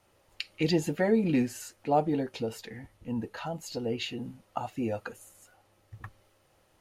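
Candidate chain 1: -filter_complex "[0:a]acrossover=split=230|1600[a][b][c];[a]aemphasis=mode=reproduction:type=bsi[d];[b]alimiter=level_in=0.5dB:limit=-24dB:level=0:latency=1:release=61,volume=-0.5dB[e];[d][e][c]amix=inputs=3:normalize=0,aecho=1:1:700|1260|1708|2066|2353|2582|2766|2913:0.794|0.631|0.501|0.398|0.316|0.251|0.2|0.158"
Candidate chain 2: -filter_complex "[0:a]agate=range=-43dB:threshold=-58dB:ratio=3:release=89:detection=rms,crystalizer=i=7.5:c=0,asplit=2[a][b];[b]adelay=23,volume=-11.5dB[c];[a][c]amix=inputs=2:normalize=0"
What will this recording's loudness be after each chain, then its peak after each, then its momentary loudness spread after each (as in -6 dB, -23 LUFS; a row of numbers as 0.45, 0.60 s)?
-27.5, -26.0 LUFS; -11.5, -3.0 dBFS; 9, 18 LU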